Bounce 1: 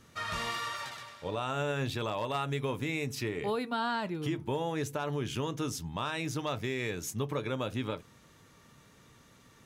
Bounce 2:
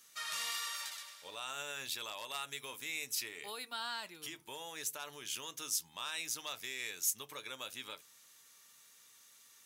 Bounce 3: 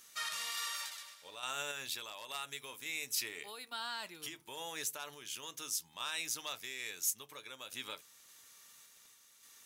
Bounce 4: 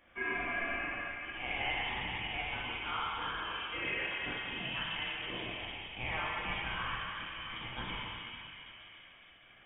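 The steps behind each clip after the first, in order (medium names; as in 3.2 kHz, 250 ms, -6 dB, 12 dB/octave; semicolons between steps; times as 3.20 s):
differentiator; trim +6 dB
random-step tremolo; crackle 20 per s -53 dBFS; trim +3 dB
plate-style reverb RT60 4.5 s, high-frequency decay 0.45×, DRR -7.5 dB; frequency inversion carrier 3.5 kHz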